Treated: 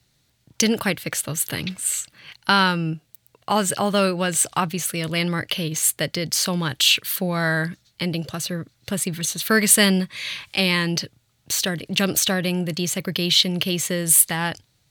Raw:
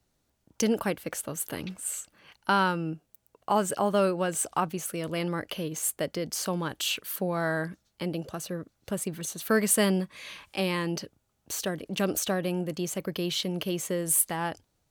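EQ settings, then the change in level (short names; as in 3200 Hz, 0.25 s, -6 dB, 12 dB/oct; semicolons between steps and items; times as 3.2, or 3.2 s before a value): ten-band EQ 125 Hz +12 dB, 2000 Hz +8 dB, 4000 Hz +11 dB, 8000 Hz +3 dB, 16000 Hz +7 dB; +2.0 dB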